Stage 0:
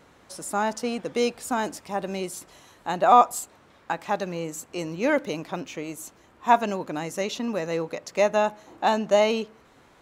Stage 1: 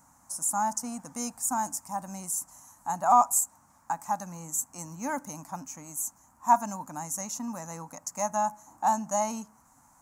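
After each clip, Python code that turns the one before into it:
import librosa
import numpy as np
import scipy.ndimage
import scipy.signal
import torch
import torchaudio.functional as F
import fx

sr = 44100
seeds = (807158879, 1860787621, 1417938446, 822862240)

y = fx.curve_eq(x, sr, hz=(270.0, 400.0, 870.0, 3500.0, 6600.0), db=(0, -23, 7, -19, 14))
y = F.gain(torch.from_numpy(y), -6.0).numpy()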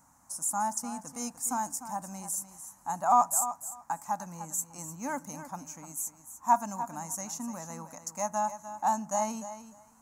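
y = fx.echo_feedback(x, sr, ms=299, feedback_pct=16, wet_db=-12.0)
y = F.gain(torch.from_numpy(y), -2.5).numpy()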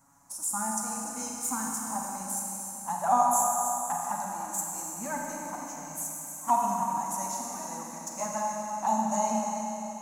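y = fx.env_flanger(x, sr, rest_ms=7.5, full_db=-24.5)
y = fx.rev_schroeder(y, sr, rt60_s=3.5, comb_ms=32, drr_db=-1.5)
y = F.gain(torch.from_numpy(y), 2.0).numpy()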